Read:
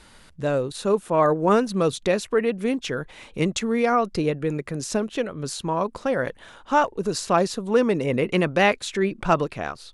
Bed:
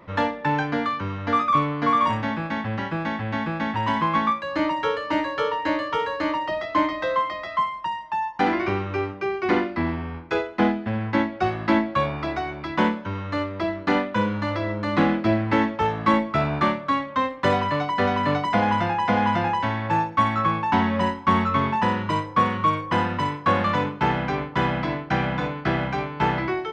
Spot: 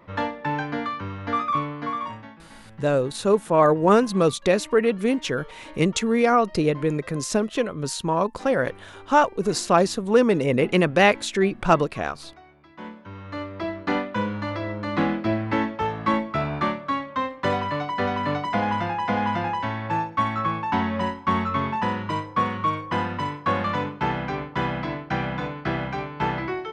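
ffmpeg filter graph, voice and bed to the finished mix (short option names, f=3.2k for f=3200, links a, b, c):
-filter_complex "[0:a]adelay=2400,volume=2dB[a];[1:a]volume=15dB,afade=t=out:st=1.47:d=0.9:silence=0.125893,afade=t=in:st=12.77:d=0.94:silence=0.11885[b];[a][b]amix=inputs=2:normalize=0"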